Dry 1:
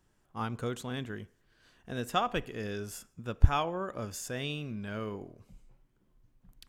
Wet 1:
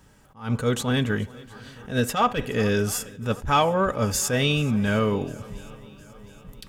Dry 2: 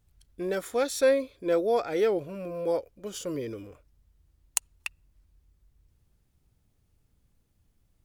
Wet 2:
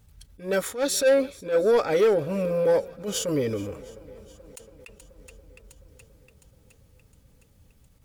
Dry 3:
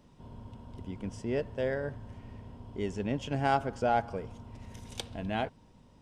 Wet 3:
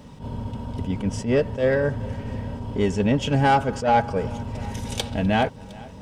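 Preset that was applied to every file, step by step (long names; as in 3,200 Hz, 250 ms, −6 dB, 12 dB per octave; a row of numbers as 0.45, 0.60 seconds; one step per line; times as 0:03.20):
in parallel at −0.5 dB: downward compressor, threshold −37 dBFS
on the sum: notch comb filter 350 Hz
soft clipping −21 dBFS
feedback echo with a long and a short gap by turns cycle 711 ms, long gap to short 1.5 to 1, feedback 52%, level −22.5 dB
level that may rise only so fast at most 180 dB per second
loudness normalisation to −24 LKFS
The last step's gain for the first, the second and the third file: +12.0, +7.0, +11.0 decibels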